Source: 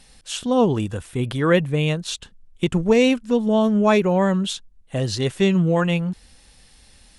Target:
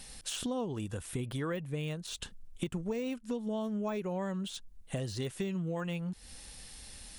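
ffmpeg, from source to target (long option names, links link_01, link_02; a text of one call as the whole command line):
ffmpeg -i in.wav -af "deesser=0.75,highshelf=frequency=7400:gain=9,acompressor=threshold=-34dB:ratio=6" out.wav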